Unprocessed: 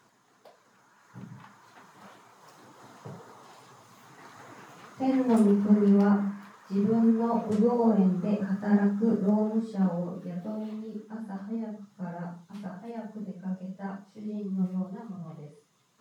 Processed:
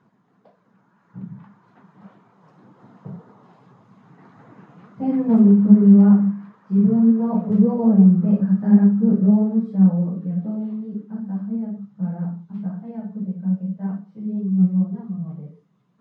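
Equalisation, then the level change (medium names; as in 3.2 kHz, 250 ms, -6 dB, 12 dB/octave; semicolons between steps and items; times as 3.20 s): low-pass 1.2 kHz 6 dB/octave; distance through air 63 m; peaking EQ 180 Hz +13 dB 0.92 oct; 0.0 dB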